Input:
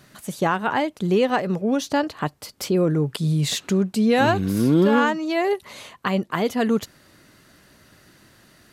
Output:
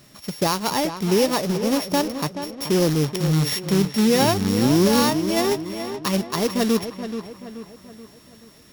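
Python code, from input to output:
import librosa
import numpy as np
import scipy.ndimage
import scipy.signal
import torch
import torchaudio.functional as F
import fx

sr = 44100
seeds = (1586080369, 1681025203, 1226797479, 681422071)

p1 = np.r_[np.sort(x[:len(x) // 8 * 8].reshape(-1, 8), axis=1).ravel(), x[len(x) // 8 * 8:]]
p2 = fx.peak_eq(p1, sr, hz=1500.0, db=-10.0, octaves=0.26)
p3 = fx.notch(p2, sr, hz=750.0, q=12.0)
p4 = fx.quant_companded(p3, sr, bits=4)
y = p4 + fx.echo_filtered(p4, sr, ms=429, feedback_pct=47, hz=3200.0, wet_db=-9.5, dry=0)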